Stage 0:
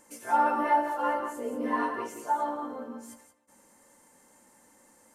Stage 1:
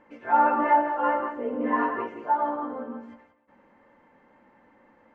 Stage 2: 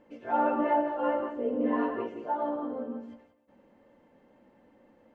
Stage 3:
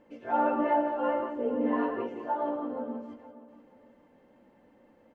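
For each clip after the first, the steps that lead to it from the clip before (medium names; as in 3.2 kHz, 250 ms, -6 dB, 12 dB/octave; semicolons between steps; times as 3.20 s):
low-pass 2.6 kHz 24 dB/octave; trim +4 dB
high-order bell 1.4 kHz -9 dB
feedback delay 471 ms, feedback 30%, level -15.5 dB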